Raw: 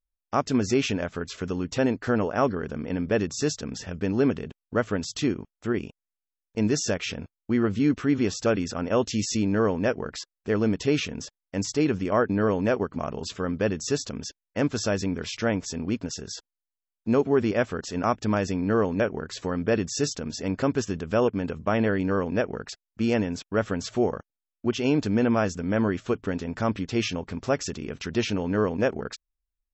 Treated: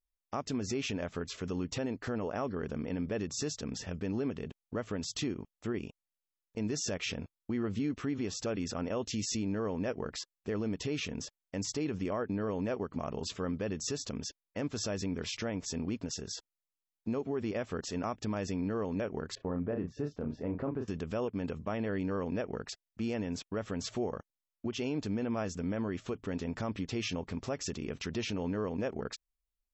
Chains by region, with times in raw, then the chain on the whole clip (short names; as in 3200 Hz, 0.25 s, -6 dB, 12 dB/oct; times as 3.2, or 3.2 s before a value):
19.35–20.88 expander -36 dBFS + LPF 1300 Hz + doubler 34 ms -7 dB
whole clip: bell 1500 Hz -4.5 dB 0.28 oct; compressor, threshold -24 dBFS; limiter -20.5 dBFS; gain -4 dB